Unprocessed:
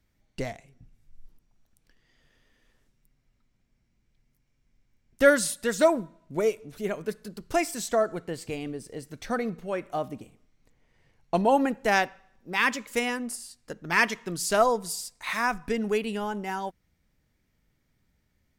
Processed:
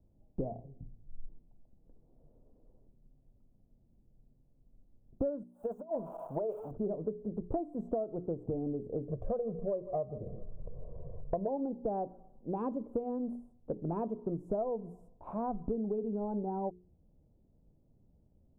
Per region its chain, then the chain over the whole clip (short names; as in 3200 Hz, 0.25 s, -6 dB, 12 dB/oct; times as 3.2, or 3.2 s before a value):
5.43–6.71 switching spikes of -21.5 dBFS + resonant low shelf 480 Hz -12.5 dB, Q 1.5 + negative-ratio compressor -31 dBFS, ratio -0.5
9.08–11.48 echo 0.155 s -20.5 dB + upward compressor, threshold -38 dBFS + comb 1.8 ms, depth 99%
whole clip: inverse Chebyshev low-pass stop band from 1800 Hz, stop band 50 dB; notches 60/120/180/240/300/360/420 Hz; compressor 12:1, threshold -37 dBFS; gain +6 dB